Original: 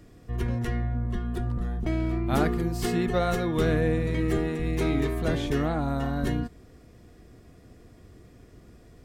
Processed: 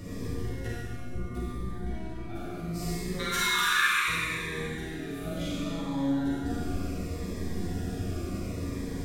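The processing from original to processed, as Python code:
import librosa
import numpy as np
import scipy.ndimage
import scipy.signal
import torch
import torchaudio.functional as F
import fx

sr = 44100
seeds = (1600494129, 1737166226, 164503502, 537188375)

y = fx.peak_eq(x, sr, hz=3100.0, db=-15.0, octaves=2.0, at=(0.68, 1.24))
y = fx.steep_highpass(y, sr, hz=1000.0, slope=96, at=(3.17, 4.08), fade=0.02)
y = fx.over_compress(y, sr, threshold_db=-38.0, ratio=-1.0)
y = fx.doubler(y, sr, ms=41.0, db=-3.0, at=(4.99, 5.64))
y = fx.room_early_taps(y, sr, ms=(11, 37), db=(-3.5, -6.0))
y = fx.rev_schroeder(y, sr, rt60_s=2.3, comb_ms=32, drr_db=-6.5)
y = fx.notch_cascade(y, sr, direction='falling', hz=0.7)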